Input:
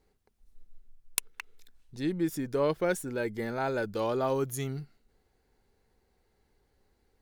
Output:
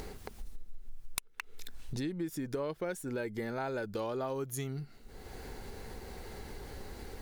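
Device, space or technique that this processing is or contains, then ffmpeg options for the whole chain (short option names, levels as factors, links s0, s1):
upward and downward compression: -af "acompressor=mode=upward:threshold=0.0282:ratio=2.5,acompressor=threshold=0.0112:ratio=6,volume=1.78"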